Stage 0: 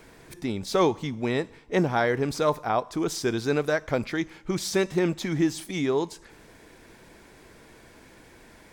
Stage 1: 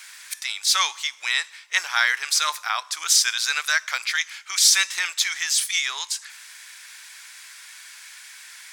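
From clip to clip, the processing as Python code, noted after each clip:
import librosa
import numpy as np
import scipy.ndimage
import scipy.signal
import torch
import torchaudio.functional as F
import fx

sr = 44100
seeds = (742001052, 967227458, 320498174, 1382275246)

y = scipy.signal.sosfilt(scipy.signal.butter(4, 1300.0, 'highpass', fs=sr, output='sos'), x)
y = fx.peak_eq(y, sr, hz=7500.0, db=10.5, octaves=2.8)
y = y * 10.0 ** (7.5 / 20.0)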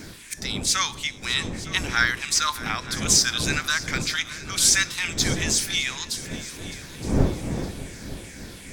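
y = fx.spec_ripple(x, sr, per_octave=0.56, drift_hz=-2.5, depth_db=7)
y = fx.dmg_wind(y, sr, seeds[0], corner_hz=260.0, level_db=-29.0)
y = fx.echo_heads(y, sr, ms=305, heads='second and third', feedback_pct=45, wet_db=-17.0)
y = y * 10.0 ** (-2.5 / 20.0)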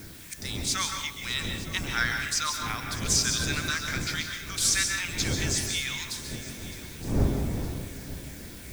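y = fx.octave_divider(x, sr, octaves=1, level_db=1.0)
y = fx.dmg_noise_colour(y, sr, seeds[1], colour='blue', level_db=-44.0)
y = fx.rev_plate(y, sr, seeds[2], rt60_s=0.6, hf_ratio=0.85, predelay_ms=120, drr_db=4.0)
y = y * 10.0 ** (-6.5 / 20.0)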